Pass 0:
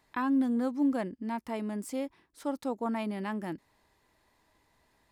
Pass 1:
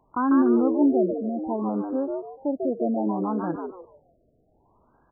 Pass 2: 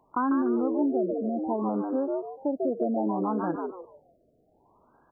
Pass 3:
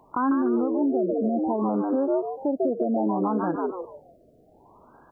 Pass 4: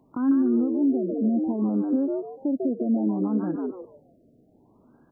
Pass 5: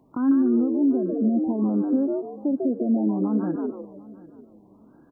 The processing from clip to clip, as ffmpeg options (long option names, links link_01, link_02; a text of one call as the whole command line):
ffmpeg -i in.wav -filter_complex "[0:a]asplit=5[link_01][link_02][link_03][link_04][link_05];[link_02]adelay=146,afreqshift=90,volume=-4dB[link_06];[link_03]adelay=292,afreqshift=180,volume=-14.5dB[link_07];[link_04]adelay=438,afreqshift=270,volume=-24.9dB[link_08];[link_05]adelay=584,afreqshift=360,volume=-35.4dB[link_09];[link_01][link_06][link_07][link_08][link_09]amix=inputs=5:normalize=0,afftfilt=real='re*lt(b*sr/1024,700*pow(1700/700,0.5+0.5*sin(2*PI*0.64*pts/sr)))':imag='im*lt(b*sr/1024,700*pow(1700/700,0.5+0.5*sin(2*PI*0.64*pts/sr)))':win_size=1024:overlap=0.75,volume=7dB" out.wav
ffmpeg -i in.wav -af "lowshelf=frequency=120:gain=-11.5,acompressor=threshold=-24dB:ratio=5,volume=1.5dB" out.wav
ffmpeg -i in.wav -af "alimiter=level_in=1dB:limit=-24dB:level=0:latency=1:release=326,volume=-1dB,volume=9dB" out.wav
ffmpeg -i in.wav -af "equalizer=frequency=125:width_type=o:width=1:gain=6,equalizer=frequency=250:width_type=o:width=1:gain=10,equalizer=frequency=1000:width_type=o:width=1:gain=-8,volume=-7dB" out.wav
ffmpeg -i in.wav -af "aecho=1:1:744|1488:0.0944|0.0264,volume=1.5dB" out.wav